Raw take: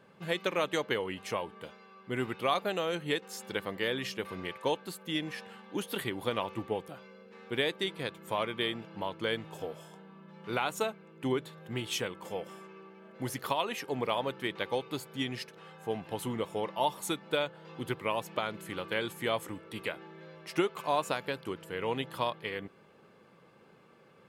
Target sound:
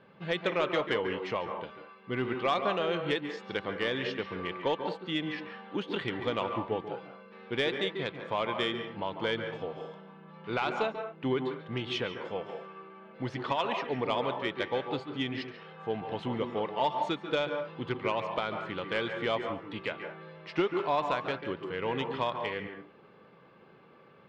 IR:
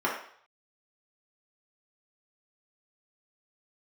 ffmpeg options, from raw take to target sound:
-filter_complex "[0:a]lowpass=f=4100:w=0.5412,lowpass=f=4100:w=1.3066,asoftclip=type=tanh:threshold=0.119,asplit=2[s0][s1];[1:a]atrim=start_sample=2205,atrim=end_sample=4410,adelay=140[s2];[s1][s2]afir=irnorm=-1:irlink=0,volume=0.141[s3];[s0][s3]amix=inputs=2:normalize=0,volume=1.19"

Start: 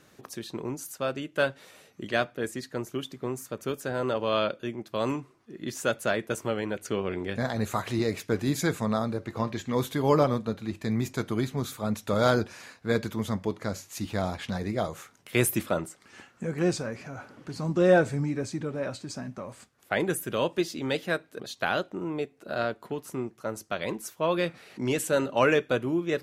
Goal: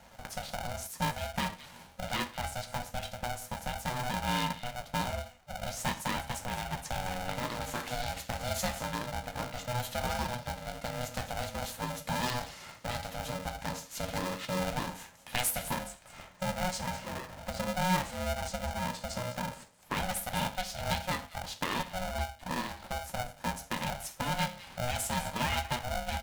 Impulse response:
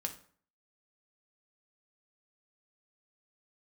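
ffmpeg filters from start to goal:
-filter_complex "[0:a]equalizer=f=420:w=0.81:g=8.5,acrossover=split=2200[s0][s1];[s0]acompressor=threshold=0.0251:ratio=4[s2];[s1]aecho=1:1:204:0.237[s3];[s2][s3]amix=inputs=2:normalize=0[s4];[1:a]atrim=start_sample=2205,atrim=end_sample=6174[s5];[s4][s5]afir=irnorm=-1:irlink=0,aeval=exprs='val(0)*sgn(sin(2*PI*370*n/s))':c=same,volume=0.841"

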